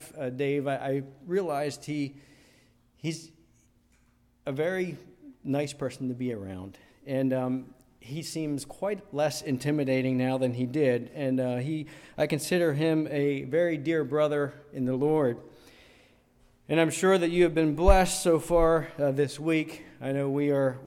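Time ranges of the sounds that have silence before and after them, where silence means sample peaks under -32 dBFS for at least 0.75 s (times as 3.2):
3.04–3.16
4.47–15.34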